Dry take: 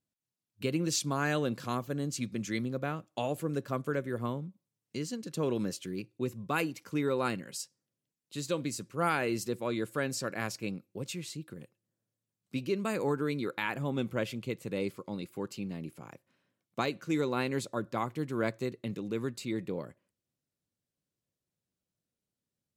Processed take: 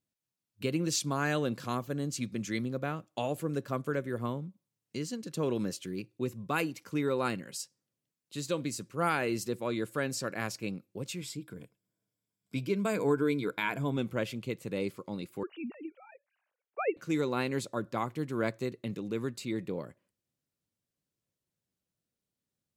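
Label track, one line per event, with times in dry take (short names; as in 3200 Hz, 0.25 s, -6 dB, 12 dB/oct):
11.200000	13.970000	ripple EQ crests per octave 1.7, crest to trough 9 dB
15.430000	16.970000	sine-wave speech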